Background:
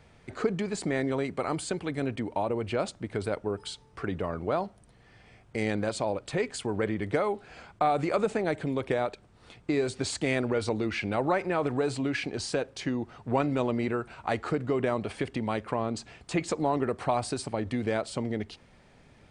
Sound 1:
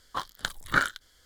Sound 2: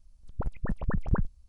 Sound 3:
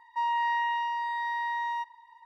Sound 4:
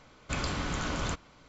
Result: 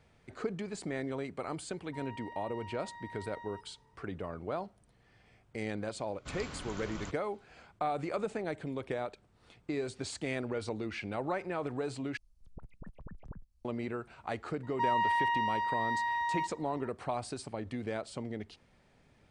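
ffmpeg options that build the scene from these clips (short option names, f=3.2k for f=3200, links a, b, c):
-filter_complex "[3:a]asplit=2[a][b];[0:a]volume=-8dB[c];[a]alimiter=level_in=2dB:limit=-24dB:level=0:latency=1:release=71,volume=-2dB[d];[2:a]acrossover=split=110|240[e][f][g];[e]acompressor=threshold=-37dB:ratio=4[h];[f]acompressor=threshold=-41dB:ratio=4[i];[g]acompressor=threshold=-45dB:ratio=4[j];[h][i][j]amix=inputs=3:normalize=0[k];[c]asplit=2[l][m];[l]atrim=end=12.174[n];[k]atrim=end=1.48,asetpts=PTS-STARTPTS,volume=-10dB[o];[m]atrim=start=13.646[p];[d]atrim=end=2.25,asetpts=PTS-STARTPTS,volume=-17dB,afade=t=in:d=0.004:c=hsin,afade=t=out:st=2.246:d=0.004:c=hsin,adelay=1770[q];[4:a]atrim=end=1.48,asetpts=PTS-STARTPTS,volume=-11dB,afade=t=in:d=0.004:c=hsin,afade=t=out:st=1.476:d=0.004:c=hsin,adelay=5960[r];[b]atrim=end=2.25,asetpts=PTS-STARTPTS,volume=-1.5dB,afade=t=in:d=0.004:c=hsin,afade=t=out:st=2.246:d=0.004:c=hsin,adelay=14630[s];[n][o]acrossfade=d=0.004:c1=hsin:c2=hsin[t];[t][p]acrossfade=d=0.004:c1=hsin:c2=hsin[u];[u][q][r][s]amix=inputs=4:normalize=0"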